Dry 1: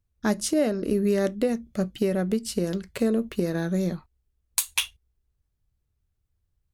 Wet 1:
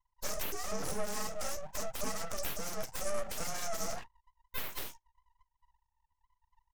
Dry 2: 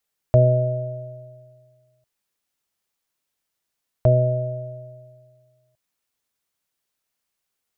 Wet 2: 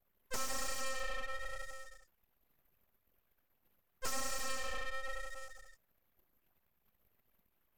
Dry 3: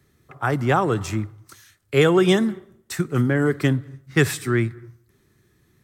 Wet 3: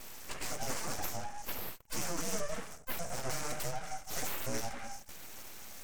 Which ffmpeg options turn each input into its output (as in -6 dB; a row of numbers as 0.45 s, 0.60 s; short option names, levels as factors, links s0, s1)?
-filter_complex "[0:a]afftfilt=real='real(if(between(b,1,1008),(2*floor((b-1)/24)+1)*24-b,b),0)':imag='imag(if(between(b,1,1008),(2*floor((b-1)/24)+1)*24-b,b),0)*if(between(b,1,1008),-1,1)':win_size=2048:overlap=0.75,asoftclip=type=tanh:threshold=0.2,asplit=2[s0][s1];[s1]highpass=f=720:p=1,volume=35.5,asoftclip=type=tanh:threshold=0.2[s2];[s0][s2]amix=inputs=2:normalize=0,lowpass=f=2300:p=1,volume=0.501,highpass=f=110:w=0.5412,highpass=f=110:w=1.3066,equalizer=f=200:t=q:w=4:g=-6,equalizer=f=400:t=q:w=4:g=-4,equalizer=f=640:t=q:w=4:g=-7,equalizer=f=3700:t=q:w=4:g=-7,equalizer=f=5900:t=q:w=4:g=9,lowpass=f=9600:w=0.5412,lowpass=f=9600:w=1.3066,aexciter=amount=15.9:drive=2:freq=5700,flanger=delay=9.2:depth=8.5:regen=-73:speed=0.49:shape=sinusoidal,acrossover=split=370[s3][s4];[s4]acompressor=threshold=0.0224:ratio=4[s5];[s3][s5]amix=inputs=2:normalize=0,flanger=delay=7.6:depth=9.5:regen=-21:speed=1.1:shape=sinusoidal,adynamicequalizer=threshold=0.00562:dfrequency=230:dqfactor=2.1:tfrequency=230:tqfactor=2.1:attack=5:release=100:ratio=0.375:range=1.5:mode=cutabove:tftype=bell,anlmdn=0.00251,aeval=exprs='abs(val(0))':c=same"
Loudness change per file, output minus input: -12.5 LU, -20.0 LU, -18.0 LU